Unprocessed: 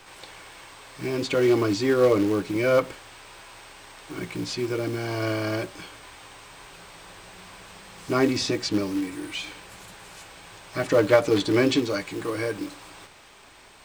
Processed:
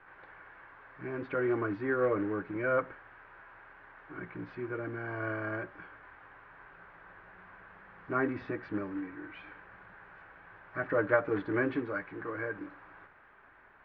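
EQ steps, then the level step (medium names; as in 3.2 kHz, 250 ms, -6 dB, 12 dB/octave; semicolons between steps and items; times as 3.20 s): four-pole ladder low-pass 1.8 kHz, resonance 60%; distance through air 54 m; 0.0 dB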